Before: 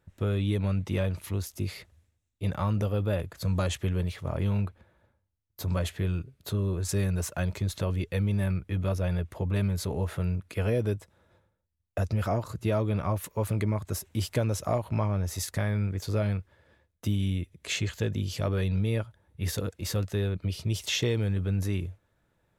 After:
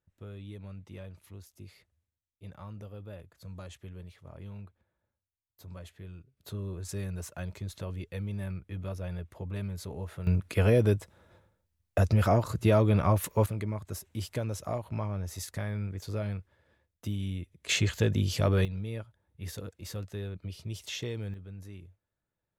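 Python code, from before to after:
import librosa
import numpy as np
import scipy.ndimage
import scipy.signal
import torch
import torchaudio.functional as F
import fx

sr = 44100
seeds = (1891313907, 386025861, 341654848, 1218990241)

y = fx.gain(x, sr, db=fx.steps((0.0, -16.5), (6.37, -8.5), (10.27, 4.0), (13.46, -6.0), (17.69, 3.0), (18.65, -9.0), (21.34, -16.5)))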